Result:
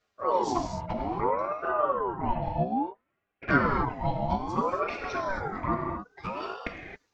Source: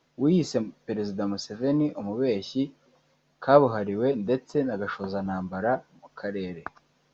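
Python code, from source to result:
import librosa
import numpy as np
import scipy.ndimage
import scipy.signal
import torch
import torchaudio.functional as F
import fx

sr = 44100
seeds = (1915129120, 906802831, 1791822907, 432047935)

y = fx.octave_divider(x, sr, octaves=2, level_db=1.0)
y = fx.lowpass(y, sr, hz=2200.0, slope=24, at=(1.03, 3.5))
y = fx.dereverb_blind(y, sr, rt60_s=1.9)
y = scipy.signal.sosfilt(scipy.signal.butter(4, 68.0, 'highpass', fs=sr, output='sos'), y)
y = fx.low_shelf(y, sr, hz=93.0, db=-10.5)
y = y + 0.42 * np.pad(y, (int(4.1 * sr / 1000.0), 0))[:len(y)]
y = fx.rider(y, sr, range_db=5, speed_s=0.5)
y = fx.env_flanger(y, sr, rest_ms=10.1, full_db=-19.5)
y = fx.rev_gated(y, sr, seeds[0], gate_ms=300, shape='flat', drr_db=0.5)
y = fx.ring_lfo(y, sr, carrier_hz=670.0, swing_pct=40, hz=0.6)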